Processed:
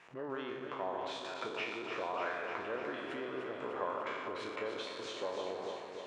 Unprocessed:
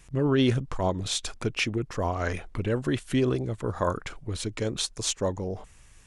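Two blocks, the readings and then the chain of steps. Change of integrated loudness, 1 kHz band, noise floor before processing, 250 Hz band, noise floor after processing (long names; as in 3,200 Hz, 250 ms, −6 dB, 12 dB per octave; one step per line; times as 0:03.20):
−11.0 dB, −4.5 dB, −53 dBFS, −17.0 dB, −46 dBFS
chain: peak hold with a decay on every bin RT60 0.77 s
downward compressor 12 to 1, threshold −35 dBFS, peak gain reduction 18 dB
surface crackle 470 per second −53 dBFS
band-pass filter 510–2,100 Hz
on a send: delay that swaps between a low-pass and a high-pass 149 ms, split 1,300 Hz, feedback 84%, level −5 dB
on the sum: level +4 dB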